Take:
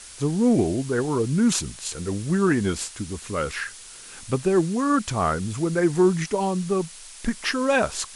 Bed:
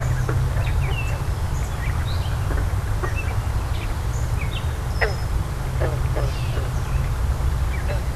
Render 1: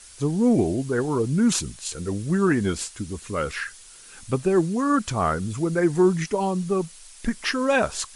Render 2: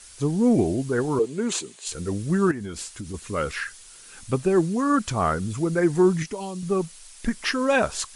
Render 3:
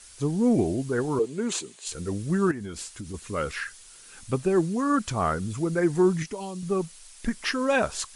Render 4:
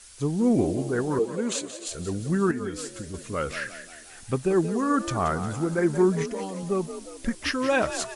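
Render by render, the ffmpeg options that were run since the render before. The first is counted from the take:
-af "afftdn=nr=6:nf=-43"
-filter_complex "[0:a]asettb=1/sr,asplit=3[s0][s1][s2];[s0]atrim=end=1.194[s3];[s1]atrim=start=1.19:end=1.87,asetpts=PTS-STARTPTS,afade=t=in:d=0.004:c=qsin,afade=t=out:st=0.676:d=0.004:c=qsin,highpass=370,equalizer=f=410:t=q:w=4:g=9,equalizer=f=1400:t=q:w=4:g=-5,equalizer=f=5400:t=q:w=4:g=-8,lowpass=f=8700:w=0.5412,lowpass=f=8700:w=1.3066[s4];[s2]atrim=start=1.866[s5];[s3][s4]acrossfade=d=0.004:c1=hsin:c2=qsin[s6];[s6][s5]acrossfade=d=0.004:c1=qsin:c2=hsin,asettb=1/sr,asplit=3[s7][s8][s9];[s7]atrim=end=2.514[s10];[s8]atrim=start=2.51:end=3.14,asetpts=PTS-STARTPTS,afade=t=in:d=0.004:c=qsin,afade=t=out:st=0.626:d=0.004:c=qsin,acompressor=threshold=0.0316:ratio=5:attack=3.2:release=140:knee=1:detection=peak[s11];[s9]atrim=start=3.136[s12];[s10][s11]acrossfade=d=0.004:c1=hsin:c2=qsin[s13];[s13][s12]acrossfade=d=0.004:c1=qsin:c2=hsin,asettb=1/sr,asplit=3[s14][s15][s16];[s14]atrim=end=6.224[s17];[s15]atrim=start=6.22:end=6.63,asetpts=PTS-STARTPTS,afade=t=in:d=0.004:c=qsin,afade=t=out:st=0.406:d=0.004:c=qsin,acrossover=split=970|2100[s18][s19][s20];[s18]acompressor=threshold=0.0282:ratio=4[s21];[s19]acompressor=threshold=0.00398:ratio=4[s22];[s20]acompressor=threshold=0.0158:ratio=4[s23];[s21][s22][s23]amix=inputs=3:normalize=0[s24];[s16]atrim=start=6.626[s25];[s17][s24]acrossfade=d=0.004:c1=hsin:c2=qsin[s26];[s26][s25]acrossfade=d=0.004:c1=qsin:c2=hsin"
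-af "volume=0.75"
-filter_complex "[0:a]asplit=7[s0][s1][s2][s3][s4][s5][s6];[s1]adelay=178,afreqshift=52,volume=0.266[s7];[s2]adelay=356,afreqshift=104,volume=0.138[s8];[s3]adelay=534,afreqshift=156,volume=0.0716[s9];[s4]adelay=712,afreqshift=208,volume=0.0376[s10];[s5]adelay=890,afreqshift=260,volume=0.0195[s11];[s6]adelay=1068,afreqshift=312,volume=0.0101[s12];[s0][s7][s8][s9][s10][s11][s12]amix=inputs=7:normalize=0"

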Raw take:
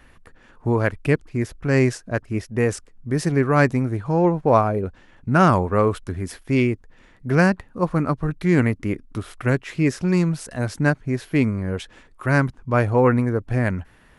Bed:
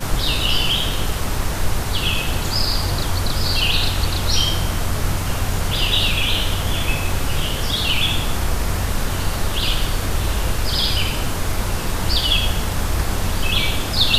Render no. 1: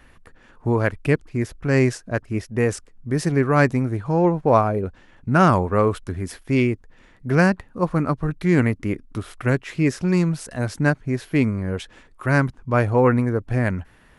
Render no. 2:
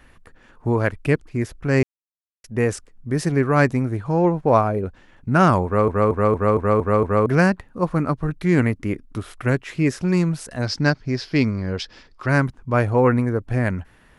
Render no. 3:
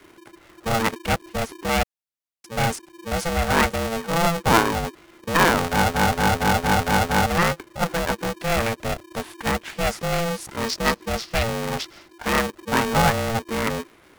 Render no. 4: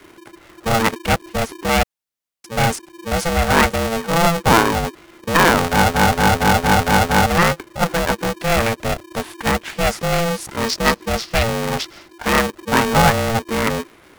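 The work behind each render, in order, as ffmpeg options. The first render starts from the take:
-af anull
-filter_complex "[0:a]asettb=1/sr,asplit=3[s0][s1][s2];[s0]atrim=end=10.624[s3];[s1]atrim=start=10.62:end=12.3,asetpts=PTS-STARTPTS,afade=t=in:d=0.004:c=qsin,afade=t=out:st=1.676:d=0.004:c=qsin,lowpass=f=5000:t=q:w=6.8[s4];[s2]atrim=start=12.296[s5];[s3][s4]acrossfade=d=0.004:c1=hsin:c2=qsin[s6];[s6][s5]acrossfade=d=0.004:c1=qsin:c2=hsin,asplit=10[s7][s8][s9][s10][s11][s12][s13][s14][s15][s16];[s7]atrim=end=1.83,asetpts=PTS-STARTPTS,afade=t=out:st=1.826:d=0.004:c=hsin[s17];[s8]atrim=start=1.83:end=2.44,asetpts=PTS-STARTPTS,volume=0[s18];[s9]atrim=start=2.44:end=5.882,asetpts=PTS-STARTPTS,afade=t=in:d=0.004:c=hsin[s19];[s10]atrim=start=5.648:end=5.882[s20];[s11]atrim=start=5.648:end=5.882[s21];[s12]atrim=start=5.648:end=5.882[s22];[s13]atrim=start=5.648:end=5.882[s23];[s14]atrim=start=5.648:end=5.882[s24];[s15]atrim=start=5.648:end=5.882[s25];[s16]atrim=start=7.258[s26];[s17][s18][s19]concat=n=3:v=0:a=1[s27];[s27][s20]acrossfade=d=0.004:c1=hsin:c2=hsin[s28];[s28][s21]acrossfade=d=0.004:c1=hsin:c2=hsin[s29];[s29][s22]acrossfade=d=0.004:c1=hsin:c2=hsin[s30];[s30][s23]acrossfade=d=0.004:c1=hsin:c2=hsin[s31];[s31][s24]acrossfade=d=0.004:c1=hsin:c2=hsin[s32];[s32][s25]acrossfade=d=0.004:c1=hsin:c2=hsin[s33];[s33][s26]acrossfade=d=0.004:c1=hsin:c2=hsin"
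-filter_complex "[0:a]acrossover=split=370|450|4600[s0][s1][s2][s3];[s0]asoftclip=type=hard:threshold=0.0631[s4];[s4][s1][s2][s3]amix=inputs=4:normalize=0,aeval=exprs='val(0)*sgn(sin(2*PI*340*n/s))':c=same"
-af "volume=1.78,alimiter=limit=0.794:level=0:latency=1"

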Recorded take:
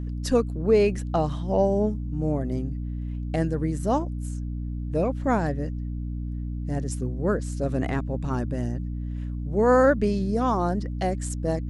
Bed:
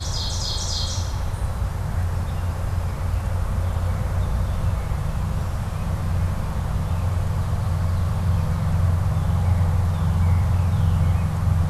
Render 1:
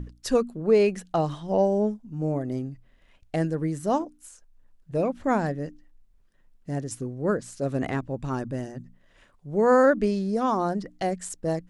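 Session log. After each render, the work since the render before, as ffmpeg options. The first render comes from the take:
-af "bandreject=f=60:t=h:w=6,bandreject=f=120:t=h:w=6,bandreject=f=180:t=h:w=6,bandreject=f=240:t=h:w=6,bandreject=f=300:t=h:w=6"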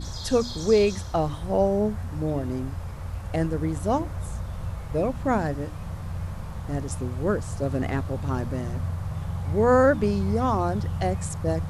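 -filter_complex "[1:a]volume=0.335[s0];[0:a][s0]amix=inputs=2:normalize=0"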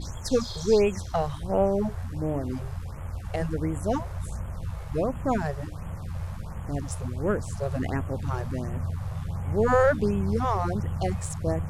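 -af "aeval=exprs='if(lt(val(0),0),0.708*val(0),val(0))':c=same,afftfilt=real='re*(1-between(b*sr/1024,230*pow(4900/230,0.5+0.5*sin(2*PI*1.4*pts/sr))/1.41,230*pow(4900/230,0.5+0.5*sin(2*PI*1.4*pts/sr))*1.41))':imag='im*(1-between(b*sr/1024,230*pow(4900/230,0.5+0.5*sin(2*PI*1.4*pts/sr))/1.41,230*pow(4900/230,0.5+0.5*sin(2*PI*1.4*pts/sr))*1.41))':win_size=1024:overlap=0.75"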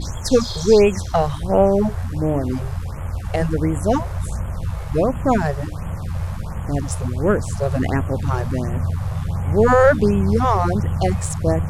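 -af "volume=2.66,alimiter=limit=0.708:level=0:latency=1"

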